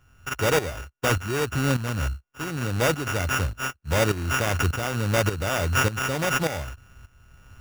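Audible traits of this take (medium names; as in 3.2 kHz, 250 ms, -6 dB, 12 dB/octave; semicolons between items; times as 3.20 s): a buzz of ramps at a fixed pitch in blocks of 16 samples; tremolo saw up 1.7 Hz, depth 75%; aliases and images of a low sample rate 4.2 kHz, jitter 0%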